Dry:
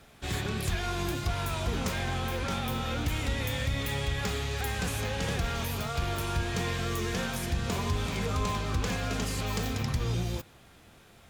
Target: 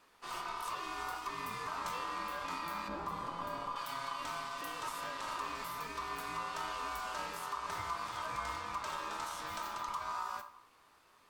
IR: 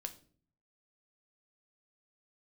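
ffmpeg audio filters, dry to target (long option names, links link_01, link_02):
-filter_complex "[1:a]atrim=start_sample=2205[link_01];[0:a][link_01]afir=irnorm=-1:irlink=0,aeval=exprs='val(0)*sin(2*PI*1100*n/s)':channel_layout=same,asettb=1/sr,asplit=3[link_02][link_03][link_04];[link_02]atrim=end=2.884[link_05];[link_03]atrim=start=2.88:end=3.76,asetpts=PTS-STARTPTS,afade=type=in:duration=0.004:curve=qsin,afade=type=out:start_time=0.876:duration=0.004:curve=qsin,tiltshelf=frequency=970:gain=9[link_06];[link_04]atrim=start=3.756[link_07];[link_05][link_06]acrossfade=duration=0.004:curve1=hsin:curve2=qsin[link_08];[link_08][link_07]acrossfade=duration=0.004:curve1=qsin:curve2=hsin,volume=-4.5dB"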